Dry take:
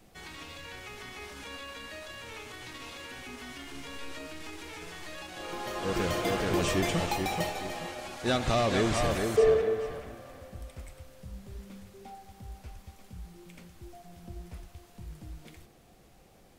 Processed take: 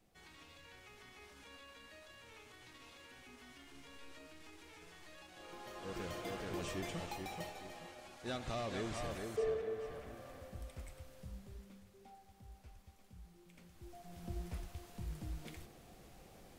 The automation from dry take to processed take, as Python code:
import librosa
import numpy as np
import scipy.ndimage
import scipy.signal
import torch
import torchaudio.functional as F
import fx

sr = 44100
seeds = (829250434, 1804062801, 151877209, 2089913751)

y = fx.gain(x, sr, db=fx.line((9.58, -14.0), (10.22, -5.0), (11.25, -5.0), (11.82, -12.0), (13.49, -12.0), (14.31, 0.0)))